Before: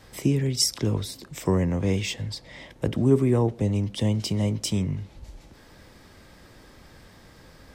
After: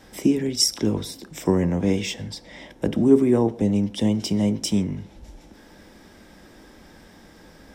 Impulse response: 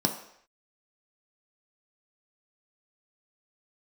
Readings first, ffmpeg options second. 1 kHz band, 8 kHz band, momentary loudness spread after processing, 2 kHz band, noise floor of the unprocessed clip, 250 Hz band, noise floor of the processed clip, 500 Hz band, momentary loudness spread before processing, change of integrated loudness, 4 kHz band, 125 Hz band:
+2.0 dB, +2.0 dB, 13 LU, +1.0 dB, −52 dBFS, +5.5 dB, −50 dBFS, +4.0 dB, 13 LU, +3.0 dB, +2.5 dB, −3.0 dB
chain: -filter_complex "[0:a]asplit=2[link_01][link_02];[1:a]atrim=start_sample=2205,afade=type=out:start_time=0.21:duration=0.01,atrim=end_sample=9702[link_03];[link_02][link_03]afir=irnorm=-1:irlink=0,volume=-17.5dB[link_04];[link_01][link_04]amix=inputs=2:normalize=0"

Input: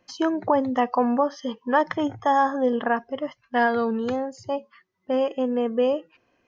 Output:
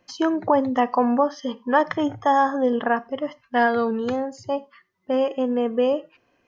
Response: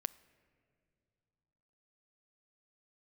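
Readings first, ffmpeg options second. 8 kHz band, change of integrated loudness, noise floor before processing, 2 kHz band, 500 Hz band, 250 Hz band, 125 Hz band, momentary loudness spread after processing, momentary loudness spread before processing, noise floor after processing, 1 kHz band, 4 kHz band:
can't be measured, +1.5 dB, −70 dBFS, +1.5 dB, +1.5 dB, +2.0 dB, +1.5 dB, 9 LU, 9 LU, −67 dBFS, +1.5 dB, +1.5 dB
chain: -filter_complex "[1:a]atrim=start_sample=2205,afade=type=out:start_time=0.16:duration=0.01,atrim=end_sample=7497[link_01];[0:a][link_01]afir=irnorm=-1:irlink=0,volume=3dB"

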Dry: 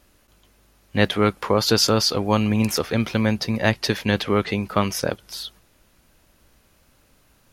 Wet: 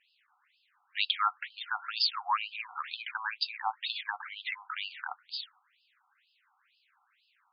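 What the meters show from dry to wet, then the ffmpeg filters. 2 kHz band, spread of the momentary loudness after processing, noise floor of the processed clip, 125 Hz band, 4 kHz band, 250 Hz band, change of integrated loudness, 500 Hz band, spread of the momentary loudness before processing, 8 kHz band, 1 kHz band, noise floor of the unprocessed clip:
−8.0 dB, 11 LU, −73 dBFS, below −40 dB, −8.0 dB, below −40 dB, −12.0 dB, below −35 dB, 11 LU, below −40 dB, −6.5 dB, −60 dBFS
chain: -af "afftfilt=real='re*between(b*sr/1024,990*pow(3700/990,0.5+0.5*sin(2*PI*2.1*pts/sr))/1.41,990*pow(3700/990,0.5+0.5*sin(2*PI*2.1*pts/sr))*1.41)':imag='im*between(b*sr/1024,990*pow(3700/990,0.5+0.5*sin(2*PI*2.1*pts/sr))/1.41,990*pow(3700/990,0.5+0.5*sin(2*PI*2.1*pts/sr))*1.41)':win_size=1024:overlap=0.75,volume=-1.5dB"

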